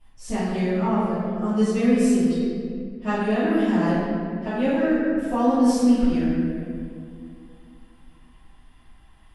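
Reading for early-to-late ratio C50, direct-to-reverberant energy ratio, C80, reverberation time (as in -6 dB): -3.5 dB, -17.5 dB, -1.0 dB, 2.2 s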